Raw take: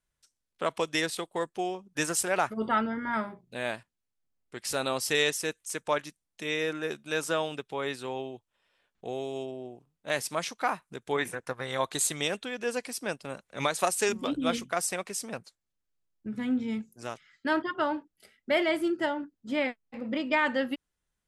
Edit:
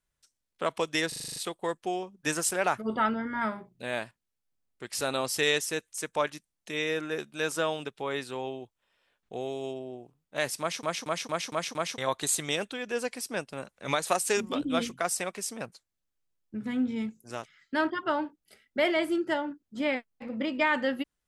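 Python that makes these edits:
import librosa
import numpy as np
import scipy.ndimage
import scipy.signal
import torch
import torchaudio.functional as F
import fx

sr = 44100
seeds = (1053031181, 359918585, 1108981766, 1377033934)

y = fx.edit(x, sr, fx.stutter(start_s=1.08, slice_s=0.04, count=8),
    fx.stutter_over(start_s=10.32, slice_s=0.23, count=6), tone=tone)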